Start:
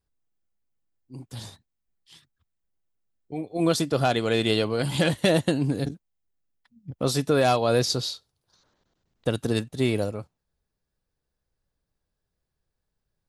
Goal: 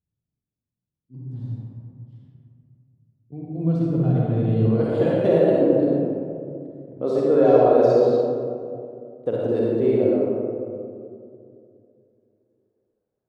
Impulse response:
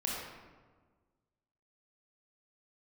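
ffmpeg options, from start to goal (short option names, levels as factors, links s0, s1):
-filter_complex "[0:a]asetnsamples=n=441:p=0,asendcmd='4.65 bandpass f 440',bandpass=f=150:t=q:w=1.6:csg=0[s0];[1:a]atrim=start_sample=2205,asetrate=22491,aresample=44100[s1];[s0][s1]afir=irnorm=-1:irlink=0"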